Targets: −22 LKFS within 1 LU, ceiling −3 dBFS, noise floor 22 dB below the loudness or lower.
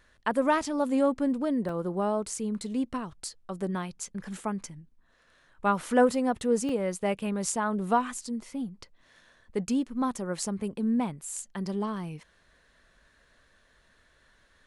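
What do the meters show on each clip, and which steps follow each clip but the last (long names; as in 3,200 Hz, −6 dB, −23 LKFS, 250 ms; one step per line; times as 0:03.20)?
number of dropouts 2; longest dropout 2.6 ms; integrated loudness −29.5 LKFS; sample peak −11.0 dBFS; target loudness −22.0 LKFS
→ repair the gap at 0:01.69/0:06.69, 2.6 ms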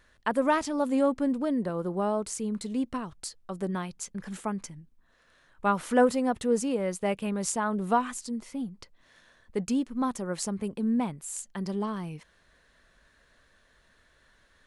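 number of dropouts 0; integrated loudness −29.5 LKFS; sample peak −11.0 dBFS; target loudness −22.0 LKFS
→ level +7.5 dB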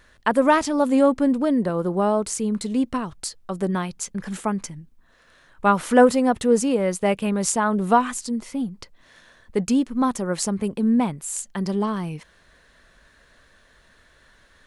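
integrated loudness −22.0 LKFS; sample peak −3.5 dBFS; background noise floor −57 dBFS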